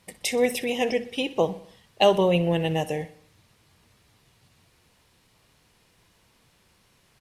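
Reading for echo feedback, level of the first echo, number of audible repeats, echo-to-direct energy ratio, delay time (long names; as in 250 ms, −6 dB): 53%, −17.0 dB, 4, −15.5 dB, 62 ms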